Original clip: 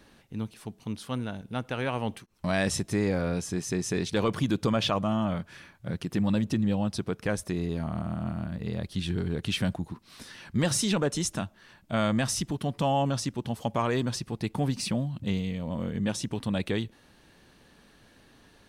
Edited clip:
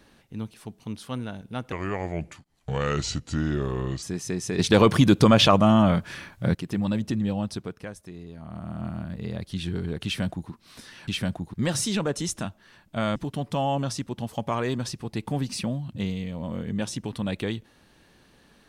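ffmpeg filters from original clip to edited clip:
-filter_complex "[0:a]asplit=10[a][b][c][d][e][f][g][h][i][j];[a]atrim=end=1.724[k];[b]atrim=start=1.72:end=3.45,asetpts=PTS-STARTPTS,asetrate=33075,aresample=44100[l];[c]atrim=start=3.446:end=4.012[m];[d]atrim=start=4.008:end=5.972,asetpts=PTS-STARTPTS,volume=9.5dB[n];[e]atrim=start=5.968:end=7.35,asetpts=PTS-STARTPTS,afade=t=out:st=0.902:d=0.48:silence=0.281838[o];[f]atrim=start=7.35:end=7.81,asetpts=PTS-STARTPTS,volume=-11dB[p];[g]atrim=start=7.81:end=10.502,asetpts=PTS-STARTPTS,afade=t=in:d=0.48:silence=0.281838[q];[h]atrim=start=9.468:end=9.932[r];[i]atrim=start=10.498:end=12.122[s];[j]atrim=start=12.428[t];[k][l]acrossfade=d=0.004:c1=hsin:c2=hsin[u];[u][m]acrossfade=d=0.004:c1=hsin:c2=hsin[v];[v][n]acrossfade=d=0.004:c1=hsin:c2=hsin[w];[o][p][q]concat=n=3:v=0:a=1[x];[w][x]acrossfade=d=0.004:c1=hsin:c2=hsin[y];[y][r]acrossfade=d=0.004:c1=hsin:c2=hsin[z];[z][s]acrossfade=d=0.004:c1=hsin:c2=hsin[aa];[aa][t]acrossfade=d=0.004:c1=hsin:c2=hsin"

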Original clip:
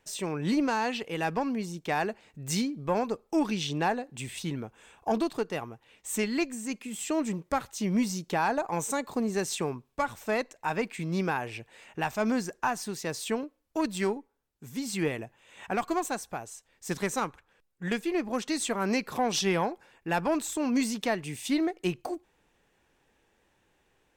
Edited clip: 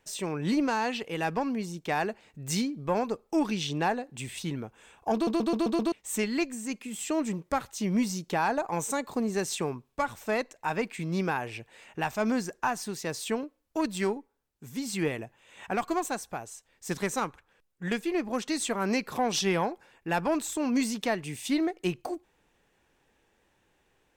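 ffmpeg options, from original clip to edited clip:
-filter_complex "[0:a]asplit=7[a][b][c][d][e][f][g];[a]atrim=end=5.272[h];[b]atrim=start=5.138:end=5.272[i];[c]atrim=start=5.138:end=5.272[j];[d]atrim=start=5.138:end=5.272[k];[e]atrim=start=5.138:end=5.272[l];[f]atrim=start=5.138:end=5.272[m];[g]atrim=start=5.918[n];[h][i]acrossfade=d=0.004:c1=hsin:c2=hsin[o];[o][j]acrossfade=d=0.004:c1=hsin:c2=hsin[p];[p][k]acrossfade=d=0.004:c1=hsin:c2=hsin[q];[q][l]acrossfade=d=0.004:c1=hsin:c2=hsin[r];[r][m]acrossfade=d=0.004:c1=hsin:c2=hsin[s];[s][n]acrossfade=d=0.004:c1=hsin:c2=hsin"

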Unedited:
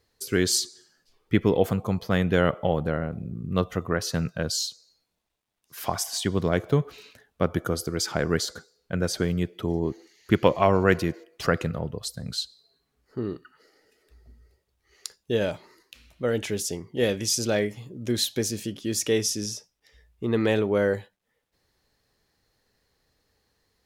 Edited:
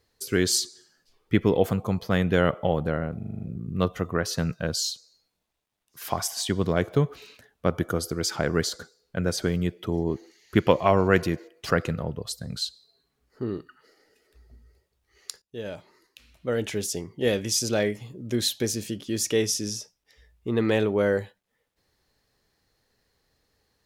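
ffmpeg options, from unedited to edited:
-filter_complex "[0:a]asplit=8[a][b][c][d][e][f][g][h];[a]atrim=end=3.212[i];[b]atrim=start=3.168:end=3.212[j];[c]atrim=start=3.168:end=3.212[k];[d]atrim=start=3.168:end=3.212[l];[e]atrim=start=3.168:end=3.212[m];[f]atrim=start=3.168:end=3.212[n];[g]atrim=start=3.168:end=15.18,asetpts=PTS-STARTPTS,afade=t=out:st=12.008:d=0.004:c=hsin:silence=0.141254[o];[h]atrim=start=15.18,asetpts=PTS-STARTPTS,afade=t=in:d=1.71:c=qsin:silence=0.141254[p];[i][j]acrossfade=d=0.004:c1=hsin:c2=hsin[q];[q][k]acrossfade=d=0.004:c1=hsin:c2=hsin[r];[r][l]acrossfade=d=0.004:c1=hsin:c2=hsin[s];[s][m]acrossfade=d=0.004:c1=hsin:c2=hsin[t];[t][n]acrossfade=d=0.004:c1=hsin:c2=hsin[u];[o][p]concat=n=2:v=0:a=1[v];[u][v]acrossfade=d=0.004:c1=hsin:c2=hsin"

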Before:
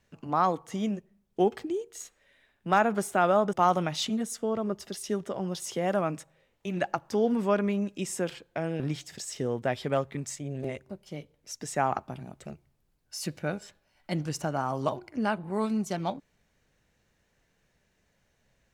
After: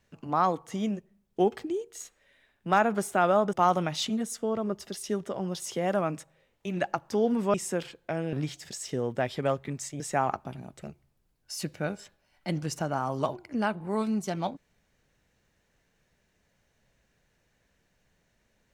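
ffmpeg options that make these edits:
-filter_complex "[0:a]asplit=3[a][b][c];[a]atrim=end=7.542[d];[b]atrim=start=8.008:end=10.472[e];[c]atrim=start=11.628[f];[d][e]acrossfade=d=0.004:c1=hsin:c2=hsin[g];[g][f]acrossfade=d=0.004:c1=hsin:c2=hsin"

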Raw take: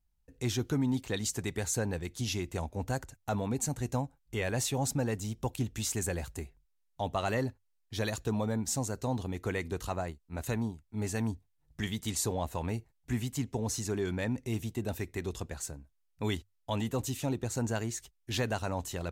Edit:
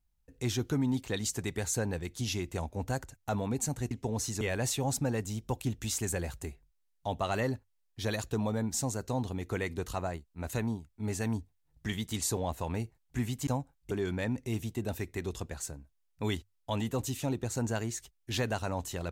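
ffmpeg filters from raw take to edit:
-filter_complex "[0:a]asplit=5[a][b][c][d][e];[a]atrim=end=3.912[f];[b]atrim=start=13.408:end=13.912[g];[c]atrim=start=4.348:end=13.412[h];[d]atrim=start=3.908:end=4.352[i];[e]atrim=start=13.908[j];[f][g]acrossfade=d=0.004:c1=hsin:c2=hsin[k];[k][h]acrossfade=d=0.004:c1=hsin:c2=hsin[l];[l][i]acrossfade=d=0.004:c1=hsin:c2=hsin[m];[m][j]acrossfade=d=0.004:c1=hsin:c2=hsin"

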